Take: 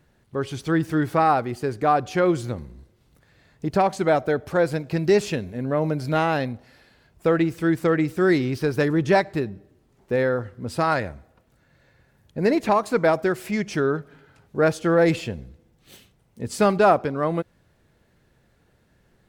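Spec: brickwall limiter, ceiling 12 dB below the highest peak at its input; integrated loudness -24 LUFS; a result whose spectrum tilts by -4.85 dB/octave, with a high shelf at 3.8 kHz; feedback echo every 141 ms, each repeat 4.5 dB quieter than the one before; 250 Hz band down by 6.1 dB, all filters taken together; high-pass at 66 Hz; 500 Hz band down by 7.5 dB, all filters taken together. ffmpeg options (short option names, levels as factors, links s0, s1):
-af "highpass=66,equalizer=f=250:t=o:g=-6,equalizer=f=500:t=o:g=-8,highshelf=f=3800:g=5.5,alimiter=limit=0.1:level=0:latency=1,aecho=1:1:141|282|423|564|705|846|987|1128|1269:0.596|0.357|0.214|0.129|0.0772|0.0463|0.0278|0.0167|0.01,volume=1.88"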